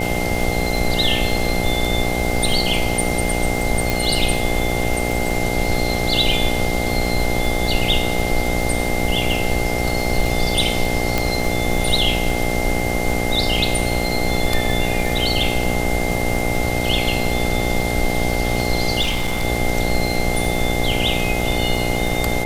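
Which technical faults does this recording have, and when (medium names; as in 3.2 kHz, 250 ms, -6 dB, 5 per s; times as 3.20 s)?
buzz 60 Hz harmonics 14 -23 dBFS
crackle 60 per s -25 dBFS
whine 2.1 kHz -26 dBFS
3.90 s: pop
11.18 s: pop
19.01–19.45 s: clipped -16 dBFS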